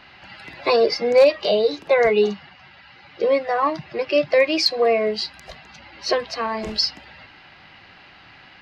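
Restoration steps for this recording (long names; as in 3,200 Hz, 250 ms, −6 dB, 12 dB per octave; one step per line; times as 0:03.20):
clipped peaks rebuilt −7 dBFS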